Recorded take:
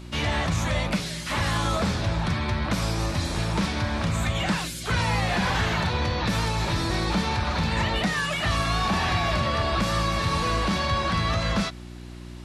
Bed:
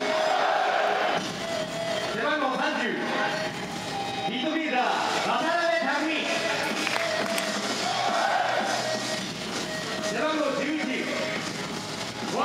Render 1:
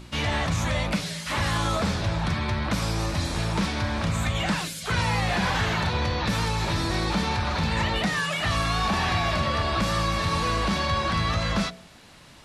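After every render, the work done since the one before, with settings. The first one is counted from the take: de-hum 60 Hz, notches 11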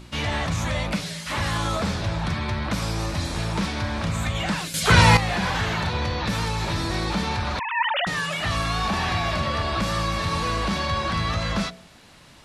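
4.74–5.17 s: gain +10.5 dB; 7.59–8.07 s: formants replaced by sine waves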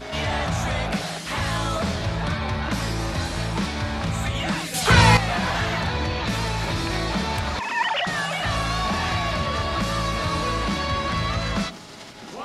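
add bed -8.5 dB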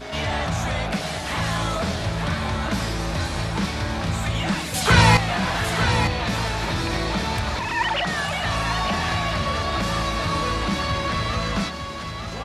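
delay 903 ms -7.5 dB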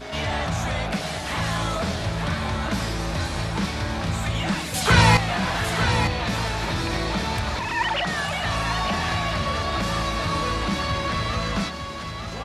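trim -1 dB

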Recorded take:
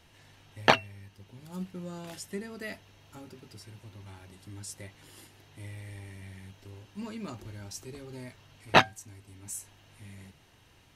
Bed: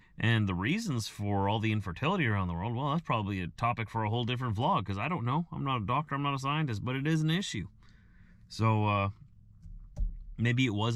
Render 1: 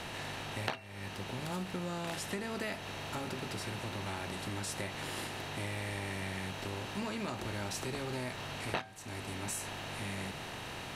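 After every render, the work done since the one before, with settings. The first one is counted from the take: spectral levelling over time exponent 0.6; compression 8:1, threshold -34 dBFS, peak gain reduction 21.5 dB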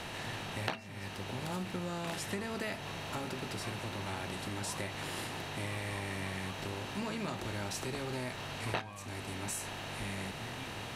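add bed -20.5 dB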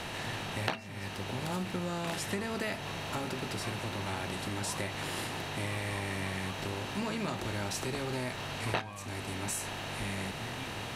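trim +3 dB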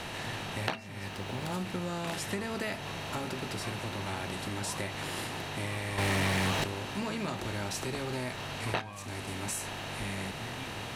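1.09–1.54 s: hysteresis with a dead band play -52 dBFS; 5.98–6.64 s: waveshaping leveller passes 3; 8.93–9.51 s: CVSD coder 64 kbps

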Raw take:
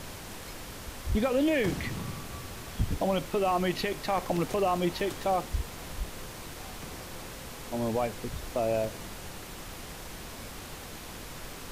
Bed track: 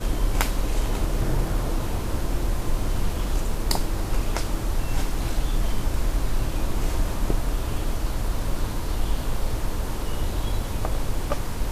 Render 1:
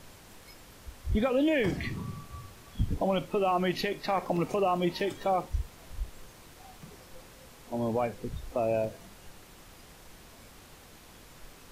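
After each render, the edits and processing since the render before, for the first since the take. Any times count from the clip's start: noise print and reduce 10 dB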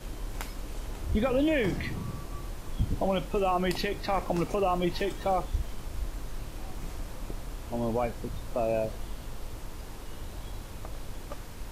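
add bed track -14 dB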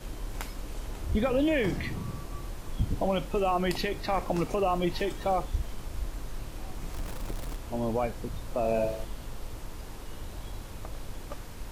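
6.93–7.57 s: jump at every zero crossing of -38.5 dBFS; 8.59–9.05 s: flutter echo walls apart 9.9 m, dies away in 0.61 s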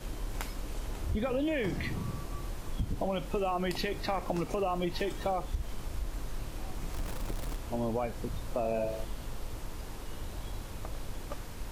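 compression 4:1, threshold -28 dBFS, peak gain reduction 6.5 dB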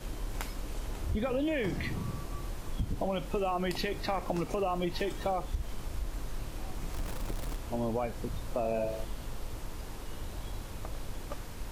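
no audible change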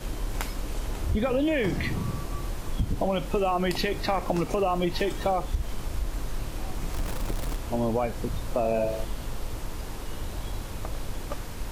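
trim +6 dB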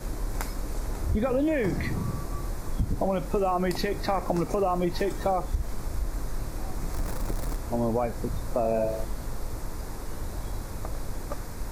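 peaking EQ 3 kHz -14 dB 0.52 oct

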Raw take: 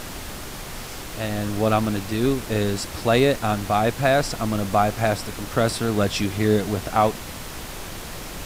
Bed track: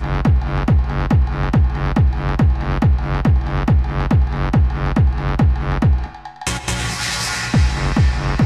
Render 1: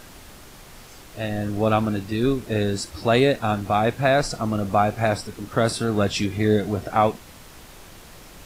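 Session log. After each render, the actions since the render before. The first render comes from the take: noise print and reduce 10 dB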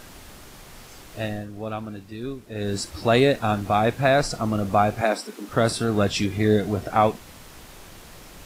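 1.23–2.78 s: dip -11 dB, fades 0.24 s; 5.01–5.49 s: steep high-pass 210 Hz 48 dB/octave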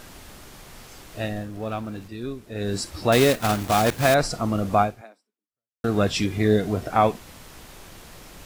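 1.36–2.08 s: companding laws mixed up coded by mu; 3.12–4.16 s: block-companded coder 3-bit; 4.82–5.84 s: fade out exponential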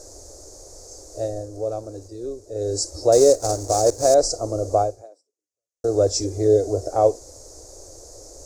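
FFT filter 100 Hz 0 dB, 190 Hz -27 dB, 300 Hz 0 dB, 540 Hz +9 dB, 1 kHz -11 dB, 3.1 kHz -27 dB, 4.6 kHz +1 dB, 6.6 kHz +12 dB, 14 kHz -13 dB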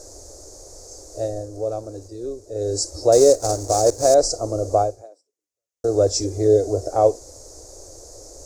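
trim +1 dB

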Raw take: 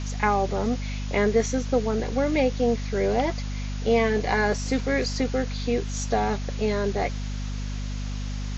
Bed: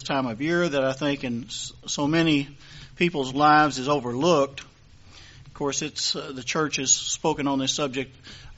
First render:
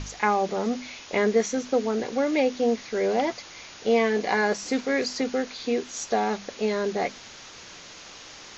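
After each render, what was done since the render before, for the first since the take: hum notches 50/100/150/200/250 Hz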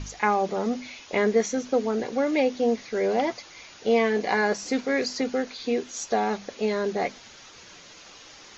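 noise reduction 6 dB, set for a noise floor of -45 dBFS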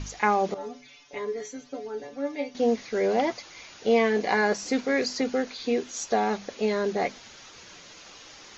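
0.54–2.55 s: inharmonic resonator 140 Hz, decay 0.22 s, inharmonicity 0.002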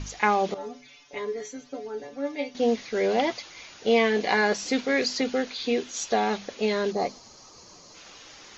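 6.91–7.95 s: time-frequency box 1.3–4 kHz -11 dB; dynamic bell 3.3 kHz, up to +7 dB, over -47 dBFS, Q 1.3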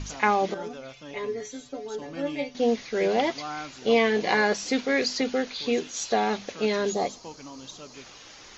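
add bed -18.5 dB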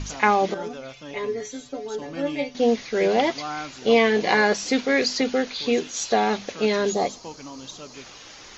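trim +3.5 dB

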